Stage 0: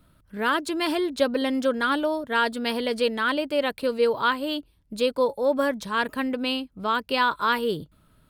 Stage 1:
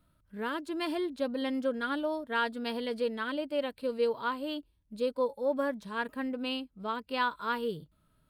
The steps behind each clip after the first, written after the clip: harmonic-percussive split percussive -11 dB; trim -7 dB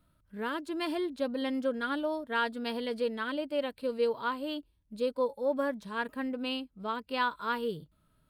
no audible change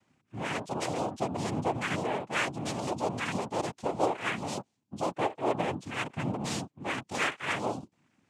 in parallel at -8.5 dB: wavefolder -34 dBFS; on the sum: noise-vocoded speech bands 4

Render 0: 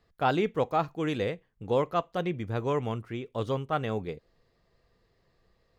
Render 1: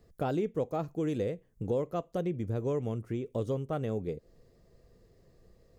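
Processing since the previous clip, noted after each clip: high-order bell 1.9 kHz -11 dB 2.9 oct; compression 2.5:1, threshold -42 dBFS, peak gain reduction 13 dB; trim +8.5 dB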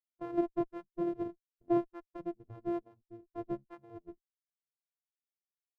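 sorted samples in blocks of 128 samples; Chebyshev shaper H 6 -13 dB, 7 -18 dB, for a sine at -19 dBFS; spectral contrast expander 2.5:1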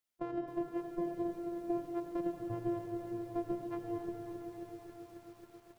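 compression 8:1, threshold -42 dBFS, peak gain reduction 17.5 dB; on a send at -4 dB: reverberation RT60 4.8 s, pre-delay 71 ms; on the sum: bit-crushed delay 270 ms, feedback 80%, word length 11-bit, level -9.5 dB; trim +6.5 dB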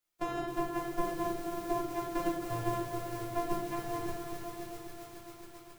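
formants flattened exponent 0.6; simulated room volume 51 m³, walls mixed, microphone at 0.87 m

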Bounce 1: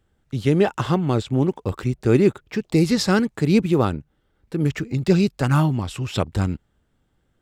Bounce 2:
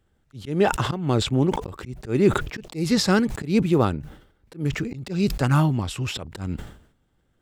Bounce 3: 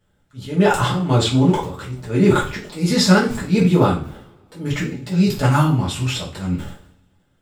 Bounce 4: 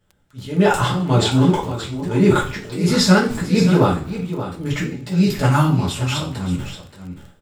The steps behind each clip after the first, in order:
slow attack 180 ms; decay stretcher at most 93 dB/s; trim -1 dB
two-slope reverb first 0.34 s, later 1.7 s, from -27 dB, DRR -6.5 dB; trim -2 dB
crackle 23 per s -32 dBFS; delay 577 ms -11 dB

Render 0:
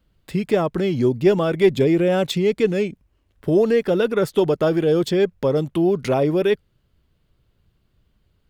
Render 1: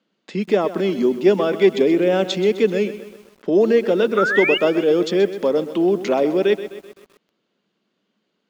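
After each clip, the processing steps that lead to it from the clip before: Chebyshev band-pass 200–6800 Hz, order 4; painted sound rise, 4.17–4.58 s, 1.2–3 kHz -22 dBFS; bit-crushed delay 128 ms, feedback 55%, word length 7-bit, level -13 dB; trim +1.5 dB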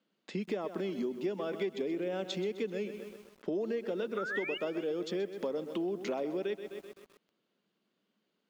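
compression 6:1, threshold -24 dBFS, peak gain reduction 14 dB; trim -8 dB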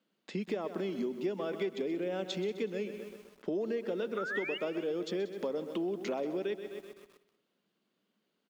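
feedback delay 184 ms, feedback 28%, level -18 dB

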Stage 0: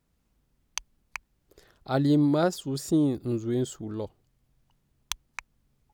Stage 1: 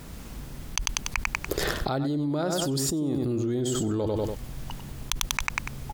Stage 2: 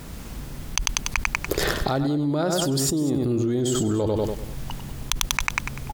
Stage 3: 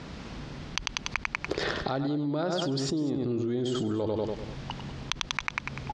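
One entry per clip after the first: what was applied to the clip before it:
on a send: feedback delay 96 ms, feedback 27%, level -9.5 dB; on the sum: level flattener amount 100%; trim -8.5 dB
delay 197 ms -16.5 dB; trim +4 dB
low-pass 5.2 kHz 24 dB/octave; compression, threshold -25 dBFS, peak gain reduction 8 dB; high-pass 130 Hz 6 dB/octave

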